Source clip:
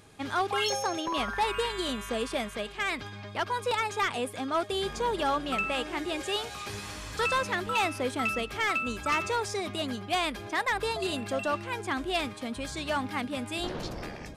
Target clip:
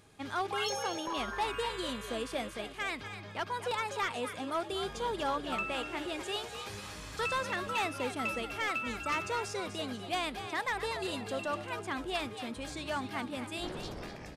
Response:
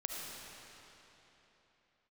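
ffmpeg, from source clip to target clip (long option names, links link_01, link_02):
-filter_complex "[0:a]asplit=4[link_01][link_02][link_03][link_04];[link_02]adelay=246,afreqshift=65,volume=-9.5dB[link_05];[link_03]adelay=492,afreqshift=130,volume=-19.7dB[link_06];[link_04]adelay=738,afreqshift=195,volume=-29.8dB[link_07];[link_01][link_05][link_06][link_07]amix=inputs=4:normalize=0,volume=-5.5dB"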